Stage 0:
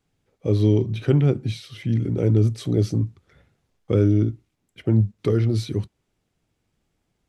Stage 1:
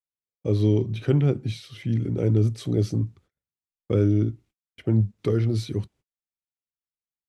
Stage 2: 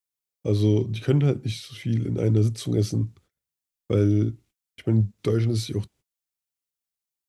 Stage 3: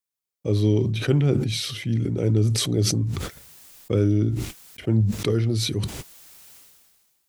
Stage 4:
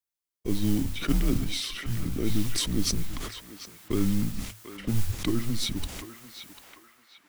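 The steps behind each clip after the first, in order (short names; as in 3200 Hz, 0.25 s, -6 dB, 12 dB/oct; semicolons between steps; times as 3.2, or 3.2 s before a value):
gate -48 dBFS, range -37 dB; gain -2.5 dB
high shelf 3900 Hz +8.5 dB
sustainer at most 33 dB/s
modulation noise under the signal 19 dB; frequency shift -110 Hz; narrowing echo 0.744 s, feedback 52%, band-pass 1400 Hz, level -7 dB; gain -3.5 dB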